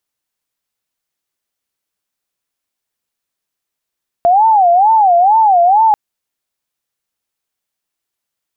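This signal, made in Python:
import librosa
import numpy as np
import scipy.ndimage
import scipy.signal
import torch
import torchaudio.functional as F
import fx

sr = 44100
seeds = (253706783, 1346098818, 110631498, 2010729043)

y = fx.siren(sr, length_s=1.69, kind='wail', low_hz=687.0, high_hz=897.0, per_s=2.2, wave='sine', level_db=-6.0)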